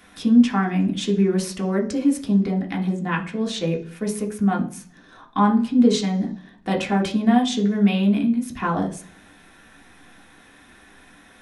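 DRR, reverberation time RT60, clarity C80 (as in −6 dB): −0.5 dB, 0.45 s, 17.0 dB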